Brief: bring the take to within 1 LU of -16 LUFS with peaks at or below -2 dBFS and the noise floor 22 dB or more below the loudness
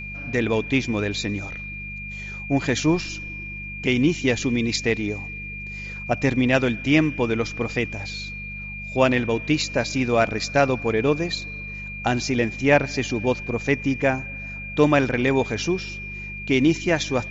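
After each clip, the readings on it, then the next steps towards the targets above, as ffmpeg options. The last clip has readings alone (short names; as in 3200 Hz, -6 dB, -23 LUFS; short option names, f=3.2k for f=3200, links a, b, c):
hum 50 Hz; harmonics up to 200 Hz; hum level -35 dBFS; steady tone 2400 Hz; tone level -33 dBFS; loudness -23.5 LUFS; peak -4.0 dBFS; loudness target -16.0 LUFS
-> -af "bandreject=f=50:t=h:w=4,bandreject=f=100:t=h:w=4,bandreject=f=150:t=h:w=4,bandreject=f=200:t=h:w=4"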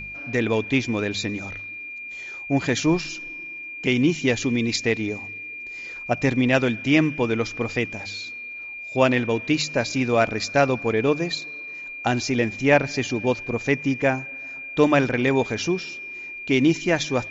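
hum none; steady tone 2400 Hz; tone level -33 dBFS
-> -af "bandreject=f=2.4k:w=30"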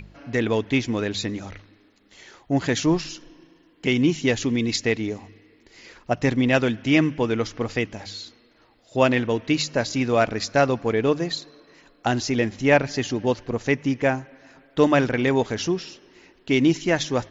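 steady tone none; loudness -23.0 LUFS; peak -4.5 dBFS; loudness target -16.0 LUFS
-> -af "volume=7dB,alimiter=limit=-2dB:level=0:latency=1"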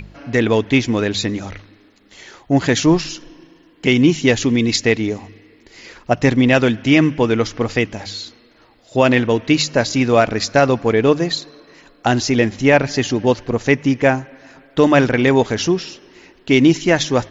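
loudness -16.5 LUFS; peak -2.0 dBFS; noise floor -51 dBFS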